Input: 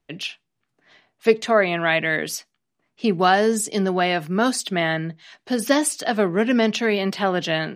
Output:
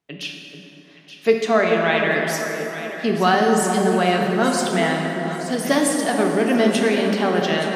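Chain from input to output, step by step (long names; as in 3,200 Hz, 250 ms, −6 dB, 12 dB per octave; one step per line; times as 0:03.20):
high-pass filter 110 Hz
on a send: delay that swaps between a low-pass and a high-pass 437 ms, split 1,100 Hz, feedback 57%, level −7 dB
on the sum: dense smooth reverb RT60 3.6 s, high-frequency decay 0.5×, DRR 1 dB
level −1.5 dB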